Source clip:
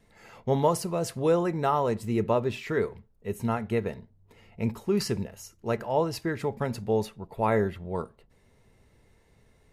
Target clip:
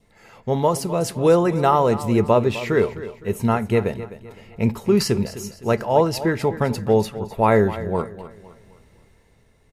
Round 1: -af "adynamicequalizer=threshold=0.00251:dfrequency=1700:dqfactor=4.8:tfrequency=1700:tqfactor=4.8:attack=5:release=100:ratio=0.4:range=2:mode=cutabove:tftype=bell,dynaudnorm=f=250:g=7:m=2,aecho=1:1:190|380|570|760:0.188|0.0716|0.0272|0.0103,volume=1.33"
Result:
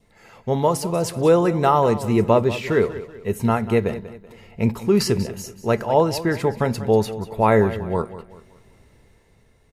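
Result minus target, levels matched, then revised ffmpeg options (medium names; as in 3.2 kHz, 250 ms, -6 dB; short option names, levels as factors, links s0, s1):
echo 66 ms early
-af "adynamicequalizer=threshold=0.00251:dfrequency=1700:dqfactor=4.8:tfrequency=1700:tqfactor=4.8:attack=5:release=100:ratio=0.4:range=2:mode=cutabove:tftype=bell,dynaudnorm=f=250:g=7:m=2,aecho=1:1:256|512|768|1024:0.188|0.0716|0.0272|0.0103,volume=1.33"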